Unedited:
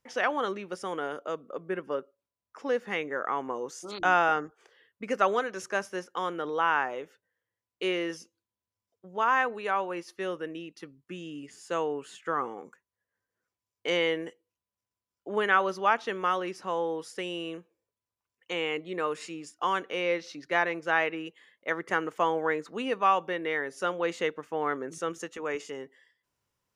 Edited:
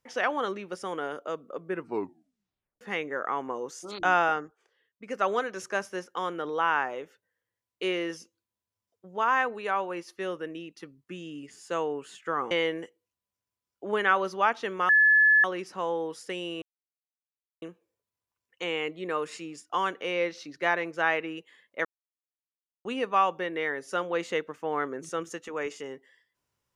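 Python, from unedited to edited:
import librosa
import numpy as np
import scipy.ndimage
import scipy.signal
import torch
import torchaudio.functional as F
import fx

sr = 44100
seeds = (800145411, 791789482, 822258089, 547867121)

y = fx.edit(x, sr, fx.tape_stop(start_s=1.72, length_s=1.09),
    fx.fade_down_up(start_s=4.24, length_s=1.14, db=-10.5, fade_s=0.42),
    fx.cut(start_s=12.51, length_s=1.44),
    fx.insert_tone(at_s=16.33, length_s=0.55, hz=1720.0, db=-16.0),
    fx.insert_silence(at_s=17.51, length_s=1.0),
    fx.silence(start_s=21.74, length_s=1.0), tone=tone)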